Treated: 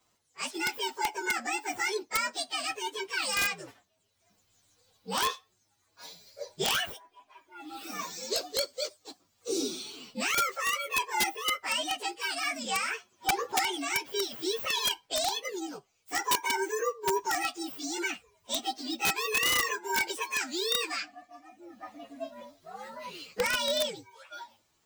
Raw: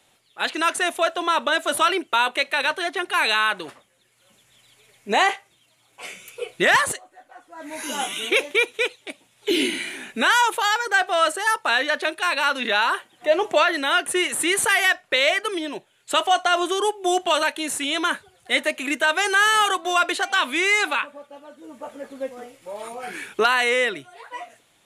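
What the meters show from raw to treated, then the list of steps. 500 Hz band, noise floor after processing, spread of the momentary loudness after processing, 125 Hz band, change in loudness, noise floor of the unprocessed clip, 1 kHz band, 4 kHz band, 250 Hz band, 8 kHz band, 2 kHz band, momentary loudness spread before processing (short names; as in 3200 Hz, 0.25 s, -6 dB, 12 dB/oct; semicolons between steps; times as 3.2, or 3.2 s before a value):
-11.0 dB, -73 dBFS, 18 LU, n/a, -9.5 dB, -62 dBFS, -11.0 dB, -7.0 dB, -10.5 dB, -4.5 dB, -12.0 dB, 17 LU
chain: inharmonic rescaling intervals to 127%; wrapped overs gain 13.5 dB; gain -5.5 dB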